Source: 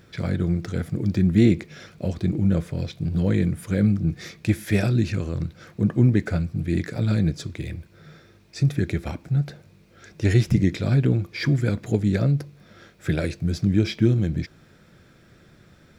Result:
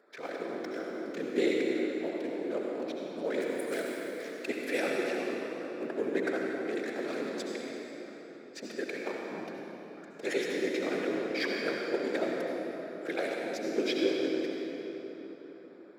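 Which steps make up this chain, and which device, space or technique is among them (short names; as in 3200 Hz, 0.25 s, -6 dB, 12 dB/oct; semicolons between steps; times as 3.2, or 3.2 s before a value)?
Wiener smoothing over 15 samples; 3.41–4.21 RIAA curve recording; whispering ghost (whisperiser; HPF 390 Hz 24 dB/oct; reverb RT60 4.0 s, pre-delay 62 ms, DRR -1.5 dB); gain -3.5 dB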